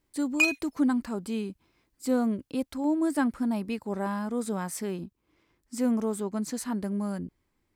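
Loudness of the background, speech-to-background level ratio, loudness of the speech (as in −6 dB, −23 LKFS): −25.5 LKFS, −4.5 dB, −30.0 LKFS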